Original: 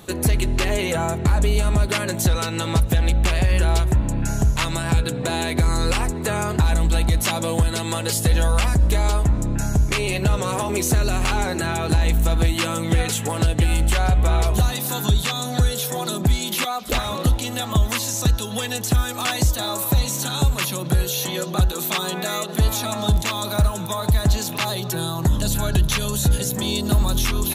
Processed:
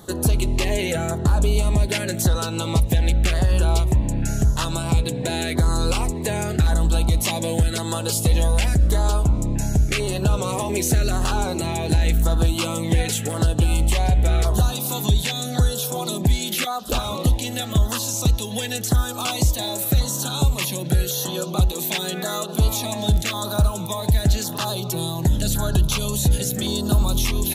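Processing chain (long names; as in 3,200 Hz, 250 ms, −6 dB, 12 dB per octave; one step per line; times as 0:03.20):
auto-filter notch saw down 0.9 Hz 920–2,600 Hz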